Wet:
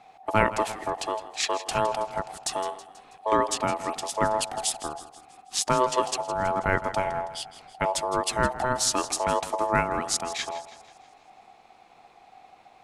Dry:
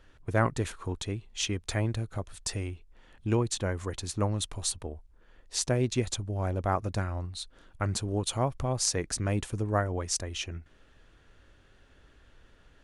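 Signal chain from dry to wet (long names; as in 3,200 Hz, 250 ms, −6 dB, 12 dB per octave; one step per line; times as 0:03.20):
echo with a time of its own for lows and highs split 320 Hz, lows 104 ms, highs 162 ms, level −14.5 dB
ring modulation 760 Hz
level +6.5 dB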